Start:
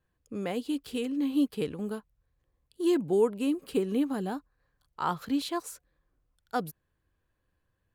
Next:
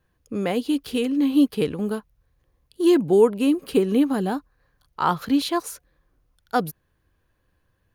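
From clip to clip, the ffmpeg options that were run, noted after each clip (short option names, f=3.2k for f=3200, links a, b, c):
-af "bandreject=f=7.7k:w=5.9,volume=8.5dB"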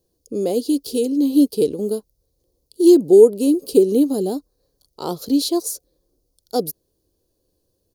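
-af "firequalizer=gain_entry='entry(140,0);entry(380,13);entry(550,9);entry(910,-5);entry(1700,-17);entry(4500,14)':delay=0.05:min_phase=1,volume=-5dB"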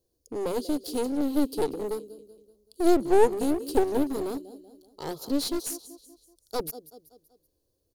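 -af "equalizer=f=180:t=o:w=0.23:g=-12,aecho=1:1:190|380|570|760:0.141|0.065|0.0299|0.0137,aeval=exprs='clip(val(0),-1,0.0562)':c=same,volume=-6dB"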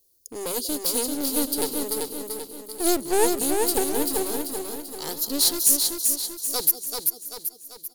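-filter_complex "[0:a]crystalizer=i=8:c=0,asplit=2[a][b];[b]aecho=0:1:389|778|1167|1556|1945|2334:0.631|0.303|0.145|0.0698|0.0335|0.0161[c];[a][c]amix=inputs=2:normalize=0,volume=-4dB"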